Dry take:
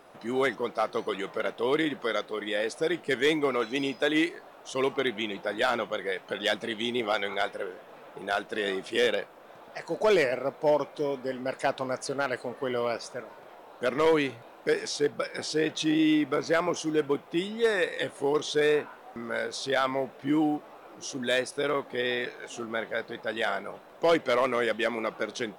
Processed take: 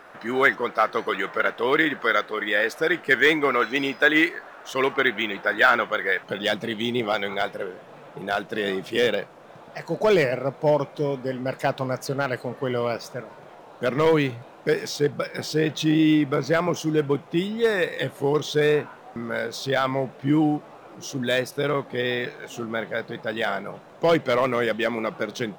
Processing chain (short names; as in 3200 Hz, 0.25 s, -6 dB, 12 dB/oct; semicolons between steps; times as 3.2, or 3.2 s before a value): bell 1600 Hz +11 dB 1 oct, from 6.23 s 140 Hz; decimation joined by straight lines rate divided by 2×; gain +3 dB